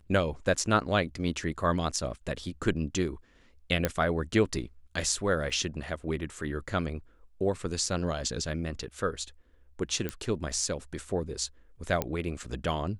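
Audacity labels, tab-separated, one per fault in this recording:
3.850000	3.850000	pop -10 dBFS
5.500000	5.500000	gap 3.8 ms
10.090000	10.090000	pop -17 dBFS
12.020000	12.020000	pop -13 dBFS

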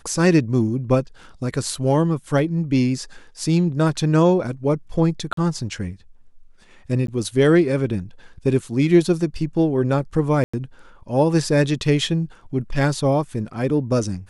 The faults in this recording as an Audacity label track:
1.750000	1.750000	gap 2.4 ms
5.330000	5.370000	gap 43 ms
7.070000	7.080000	gap
10.440000	10.540000	gap 95 ms

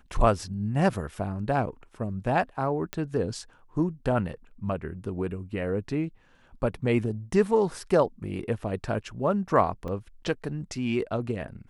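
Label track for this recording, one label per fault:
2.930000	2.930000	pop -15 dBFS
9.880000	9.880000	gap 3 ms

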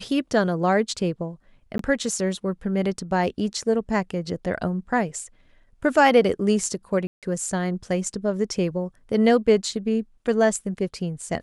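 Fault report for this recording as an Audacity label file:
1.780000	1.790000	gap 13 ms
7.070000	7.230000	gap 0.157 s

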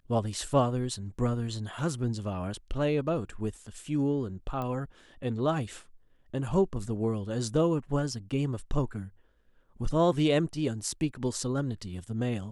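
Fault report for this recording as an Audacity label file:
4.620000	4.620000	pop -23 dBFS

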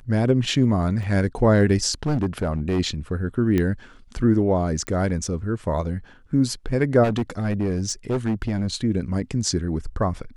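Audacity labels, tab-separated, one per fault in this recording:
1.030000	1.030000	gap 2.8 ms
2.060000	2.800000	clipped -18 dBFS
3.580000	3.580000	pop -11 dBFS
4.870000	4.870000	pop -14 dBFS
7.030000	8.760000	clipped -19 dBFS

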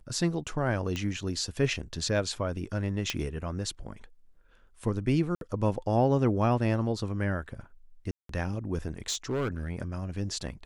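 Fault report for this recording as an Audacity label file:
0.960000	0.960000	pop -20 dBFS
3.100000	3.100000	pop -13 dBFS
5.350000	5.410000	gap 62 ms
8.110000	8.290000	gap 0.183 s
9.080000	9.710000	clipped -26 dBFS

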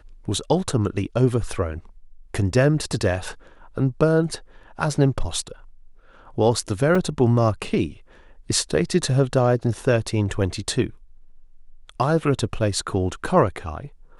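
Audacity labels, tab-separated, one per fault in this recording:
6.950000	6.950000	gap 3.3 ms

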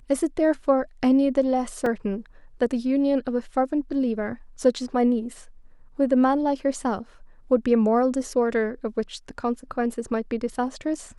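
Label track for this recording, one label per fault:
1.860000	1.860000	gap 3.1 ms

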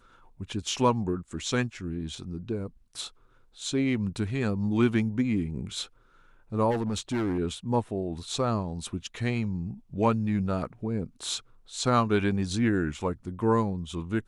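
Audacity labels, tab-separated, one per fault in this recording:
6.700000	7.390000	clipped -24.5 dBFS

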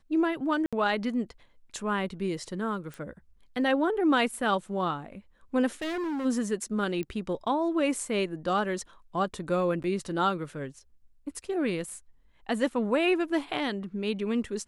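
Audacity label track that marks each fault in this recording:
0.660000	0.730000	gap 66 ms
2.940000	2.940000	pop
5.810000	6.260000	clipped -29.5 dBFS
7.030000	7.030000	pop -24 dBFS
9.830000	9.840000	gap 9.8 ms

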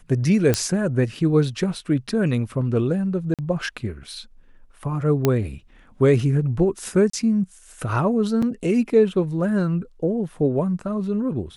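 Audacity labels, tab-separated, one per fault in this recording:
0.540000	0.540000	pop -5 dBFS
3.340000	3.390000	gap 47 ms
5.250000	5.250000	pop -5 dBFS
7.100000	7.130000	gap 34 ms
8.420000	8.430000	gap 5.1 ms

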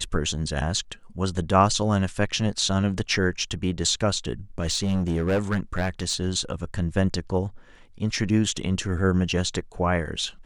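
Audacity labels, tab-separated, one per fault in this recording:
4.590000	6.150000	clipped -19 dBFS

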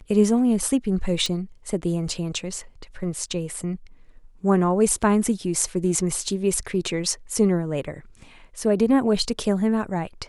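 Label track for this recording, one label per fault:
1.260000	1.260000	pop

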